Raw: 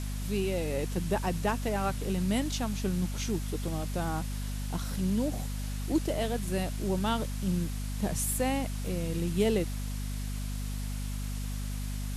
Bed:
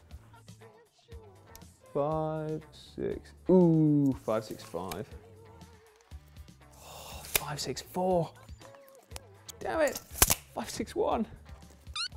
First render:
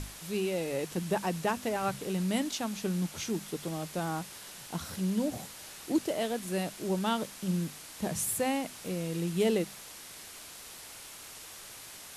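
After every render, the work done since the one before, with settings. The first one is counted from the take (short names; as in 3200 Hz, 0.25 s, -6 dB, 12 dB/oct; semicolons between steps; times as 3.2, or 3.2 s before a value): notches 50/100/150/200/250 Hz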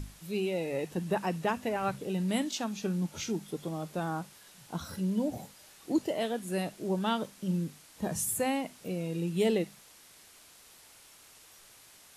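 noise print and reduce 9 dB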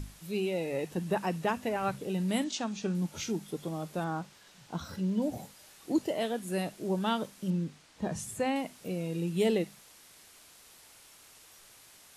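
2.44–2.95 LPF 8300 Hz 24 dB/oct; 4.04–5.22 bell 11000 Hz -11.5 dB 0.68 oct; 7.5–8.56 air absorption 69 m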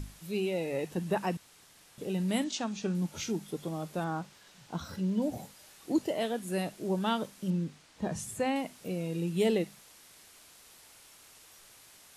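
1.37–1.98 room tone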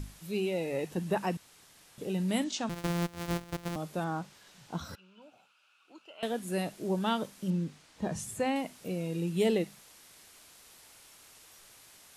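2.69–3.76 sample sorter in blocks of 256 samples; 4.95–6.23 double band-pass 1900 Hz, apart 0.9 oct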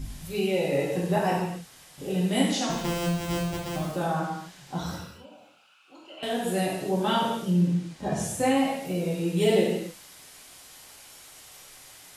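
non-linear reverb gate 0.32 s falling, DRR -6 dB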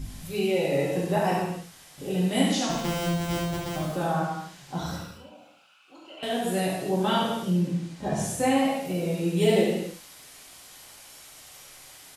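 echo 71 ms -7.5 dB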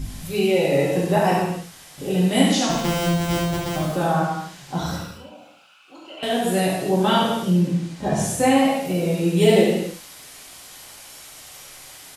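gain +6 dB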